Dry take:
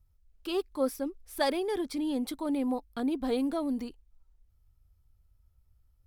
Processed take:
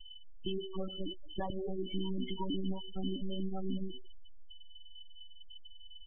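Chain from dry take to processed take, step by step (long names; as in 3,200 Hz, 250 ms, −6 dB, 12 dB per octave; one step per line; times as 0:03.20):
downward compressor 20 to 1, threshold −40 dBFS, peak gain reduction 18 dB
steady tone 3,000 Hz −56 dBFS
one-pitch LPC vocoder at 8 kHz 190 Hz
convolution reverb, pre-delay 3 ms, DRR 9.5 dB
gate on every frequency bin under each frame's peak −15 dB strong
comb filter 1 ms, depth 48%
level +7.5 dB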